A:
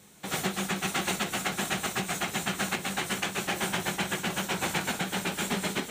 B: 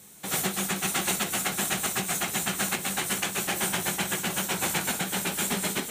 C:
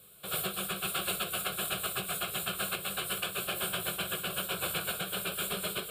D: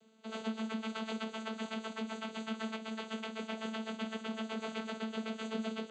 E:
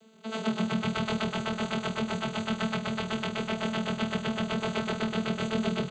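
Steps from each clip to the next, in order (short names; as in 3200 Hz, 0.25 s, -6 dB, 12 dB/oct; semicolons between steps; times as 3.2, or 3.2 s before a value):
bell 12000 Hz +11.5 dB 1.2 oct
fixed phaser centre 1300 Hz, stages 8; gain -2 dB
vocoder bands 16, saw 221 Hz; gain -2 dB
frequency-shifting echo 0.122 s, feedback 51%, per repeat -40 Hz, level -4.5 dB; gain +7.5 dB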